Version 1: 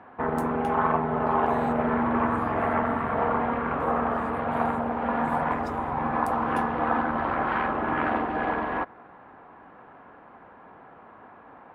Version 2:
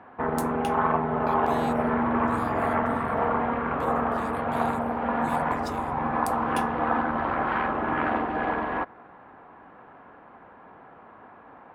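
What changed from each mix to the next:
speech +10.5 dB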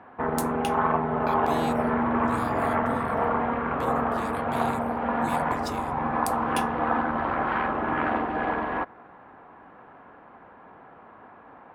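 speech +4.5 dB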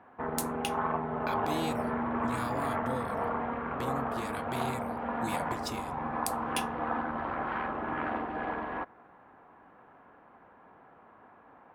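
background −7.5 dB

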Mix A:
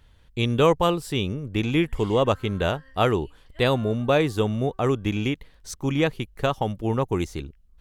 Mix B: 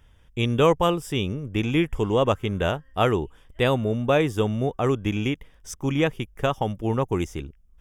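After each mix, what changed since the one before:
background −10.0 dB
master: add Butterworth band-reject 4,200 Hz, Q 3.5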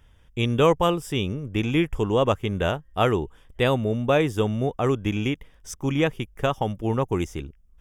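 background −12.0 dB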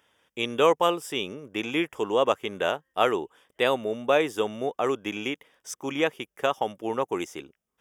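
master: add high-pass filter 380 Hz 12 dB per octave

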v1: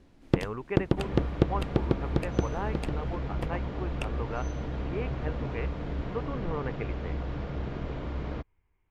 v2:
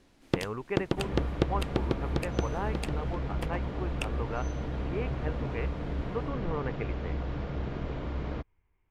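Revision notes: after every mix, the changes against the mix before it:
first sound: add spectral tilt +2 dB per octave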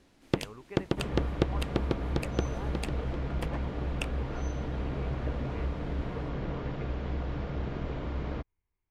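speech −11.5 dB

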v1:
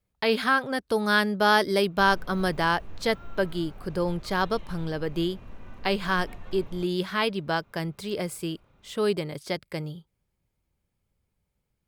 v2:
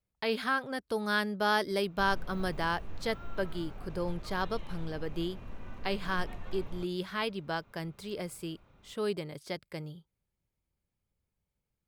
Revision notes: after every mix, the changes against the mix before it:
speech −7.5 dB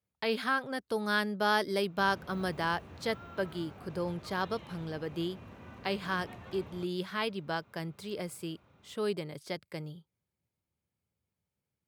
master: add high-pass filter 76 Hz 24 dB per octave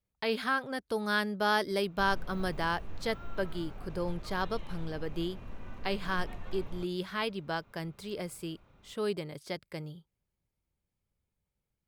master: remove high-pass filter 76 Hz 24 dB per octave

